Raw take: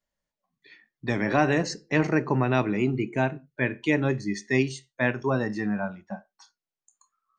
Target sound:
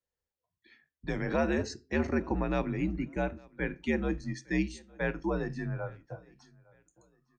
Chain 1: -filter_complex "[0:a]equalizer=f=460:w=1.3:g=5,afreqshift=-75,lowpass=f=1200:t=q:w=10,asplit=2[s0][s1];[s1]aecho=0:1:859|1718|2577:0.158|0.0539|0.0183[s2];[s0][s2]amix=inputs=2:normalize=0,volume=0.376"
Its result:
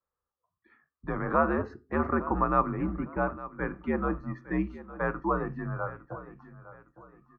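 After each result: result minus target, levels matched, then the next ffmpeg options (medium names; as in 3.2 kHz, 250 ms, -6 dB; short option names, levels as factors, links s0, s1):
1 kHz band +8.0 dB; echo-to-direct +9.5 dB
-filter_complex "[0:a]equalizer=f=460:w=1.3:g=5,afreqshift=-75,asplit=2[s0][s1];[s1]aecho=0:1:859|1718|2577:0.158|0.0539|0.0183[s2];[s0][s2]amix=inputs=2:normalize=0,volume=0.376"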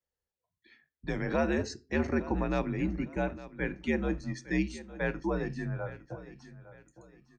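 echo-to-direct +9.5 dB
-filter_complex "[0:a]equalizer=f=460:w=1.3:g=5,afreqshift=-75,asplit=2[s0][s1];[s1]aecho=0:1:859|1718:0.0531|0.0181[s2];[s0][s2]amix=inputs=2:normalize=0,volume=0.376"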